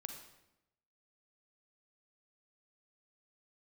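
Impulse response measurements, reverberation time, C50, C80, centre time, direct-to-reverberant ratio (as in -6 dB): 0.90 s, 5.5 dB, 8.0 dB, 27 ms, 4.5 dB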